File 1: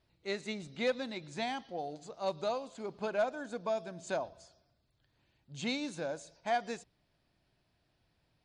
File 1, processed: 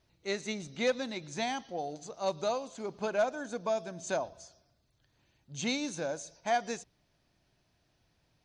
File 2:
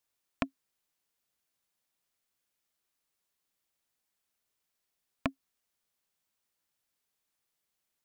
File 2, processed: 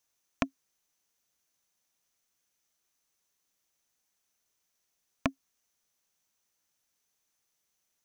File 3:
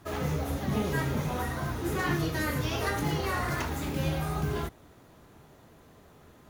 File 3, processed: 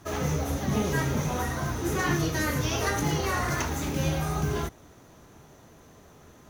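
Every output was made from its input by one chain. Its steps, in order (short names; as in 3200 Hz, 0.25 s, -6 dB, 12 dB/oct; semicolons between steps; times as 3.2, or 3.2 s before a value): bell 6100 Hz +11 dB 0.22 oct; gain +2.5 dB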